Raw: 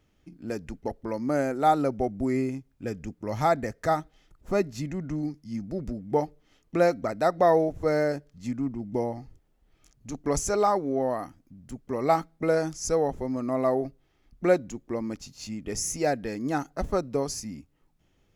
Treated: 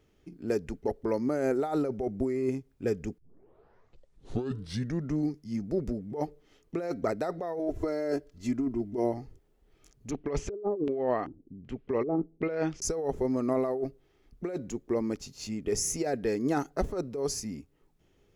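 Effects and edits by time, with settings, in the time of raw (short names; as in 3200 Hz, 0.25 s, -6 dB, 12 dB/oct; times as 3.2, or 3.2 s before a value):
3.18 tape start 1.97 s
7.59–9.14 comb 3 ms
10.11–12.82 LFO low-pass square 1.3 Hz 360–2800 Hz
whole clip: bell 410 Hz +9.5 dB 0.42 oct; negative-ratio compressor -25 dBFS, ratio -1; gain -4 dB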